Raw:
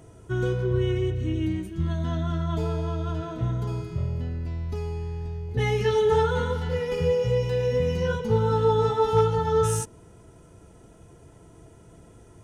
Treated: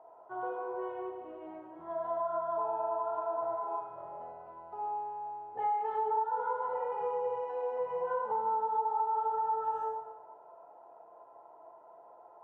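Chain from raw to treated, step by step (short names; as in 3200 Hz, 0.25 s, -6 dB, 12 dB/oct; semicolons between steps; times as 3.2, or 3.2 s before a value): Butterworth band-pass 820 Hz, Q 2.2; reverb RT60 1.1 s, pre-delay 43 ms, DRR -1.5 dB; compressor 6:1, threshold -34 dBFS, peak gain reduction 13 dB; gain +5 dB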